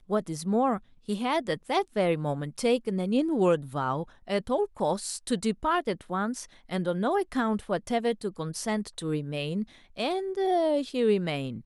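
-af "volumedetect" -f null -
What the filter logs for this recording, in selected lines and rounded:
mean_volume: -28.4 dB
max_volume: -12.8 dB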